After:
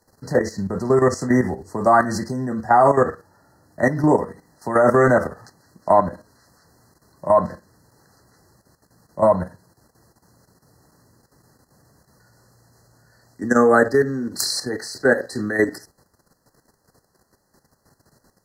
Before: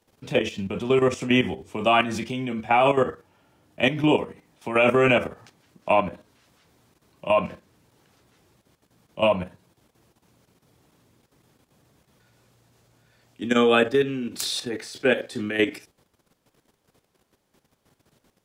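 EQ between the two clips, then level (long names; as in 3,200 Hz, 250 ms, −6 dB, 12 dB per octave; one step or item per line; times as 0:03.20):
linear-phase brick-wall band-stop 2,000–4,000 Hz
parametric band 320 Hz −3.5 dB 1.7 octaves
+6.5 dB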